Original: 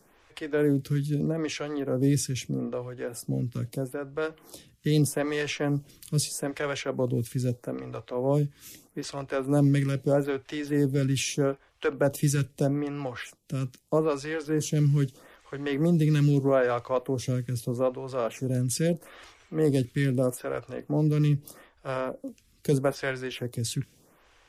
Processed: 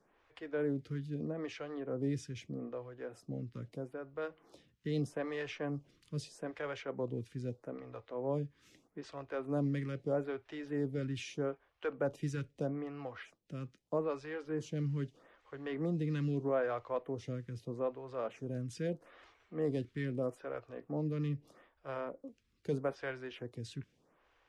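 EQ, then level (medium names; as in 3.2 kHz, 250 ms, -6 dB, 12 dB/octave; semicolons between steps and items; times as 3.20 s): tape spacing loss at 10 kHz 22 dB; bass shelf 270 Hz -8 dB; -6.5 dB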